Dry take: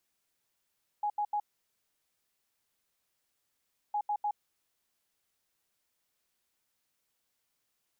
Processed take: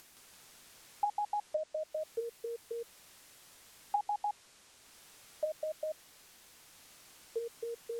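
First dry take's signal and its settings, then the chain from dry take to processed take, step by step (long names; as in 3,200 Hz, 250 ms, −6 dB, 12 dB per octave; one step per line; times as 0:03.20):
beeps in groups sine 832 Hz, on 0.07 s, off 0.08 s, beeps 3, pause 2.54 s, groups 2, −28 dBFS
in parallel at −1 dB: upward compression, threshold −40 dBFS
on the sum: treble cut that deepens with the level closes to 570 Hz, closed at −27 dBFS
delay with pitch and tempo change per echo 168 ms, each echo −5 semitones, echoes 2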